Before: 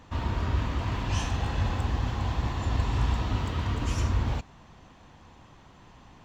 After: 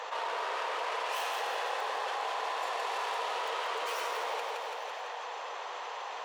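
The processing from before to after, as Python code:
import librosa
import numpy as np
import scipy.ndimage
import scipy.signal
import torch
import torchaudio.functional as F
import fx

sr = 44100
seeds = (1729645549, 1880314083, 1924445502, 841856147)

y = fx.tracing_dist(x, sr, depth_ms=0.16)
y = scipy.signal.sosfilt(scipy.signal.cheby1(5, 1.0, 450.0, 'highpass', fs=sr, output='sos'), y)
y = fx.high_shelf(y, sr, hz=6500.0, db=-11.0)
y = fx.echo_feedback(y, sr, ms=167, feedback_pct=49, wet_db=-6.5)
y = fx.env_flatten(y, sr, amount_pct=70)
y = y * librosa.db_to_amplitude(2.0)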